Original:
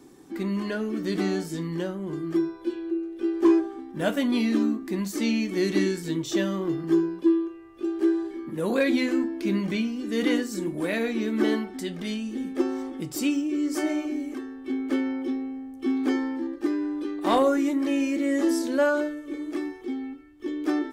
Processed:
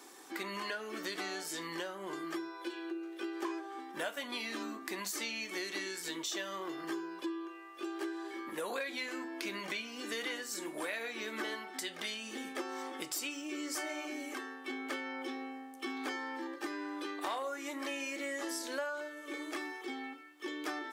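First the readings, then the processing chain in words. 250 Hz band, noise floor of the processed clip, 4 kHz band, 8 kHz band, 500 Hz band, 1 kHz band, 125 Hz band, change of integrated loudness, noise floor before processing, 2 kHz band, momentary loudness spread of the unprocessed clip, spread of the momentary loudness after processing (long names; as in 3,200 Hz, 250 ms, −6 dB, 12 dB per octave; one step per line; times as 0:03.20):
−18.0 dB, −50 dBFS, −3.0 dB, −2.0 dB, −14.0 dB, −7.0 dB, −24.5 dB, −13.0 dB, −43 dBFS, −4.5 dB, 10 LU, 5 LU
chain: high-pass filter 790 Hz 12 dB per octave
downward compressor 6 to 1, threshold −43 dBFS, peak gain reduction 19.5 dB
level +6.5 dB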